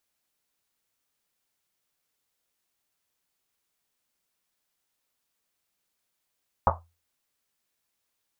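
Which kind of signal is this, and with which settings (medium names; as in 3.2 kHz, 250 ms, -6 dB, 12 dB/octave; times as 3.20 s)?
Risset drum, pitch 84 Hz, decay 0.32 s, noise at 890 Hz, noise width 640 Hz, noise 70%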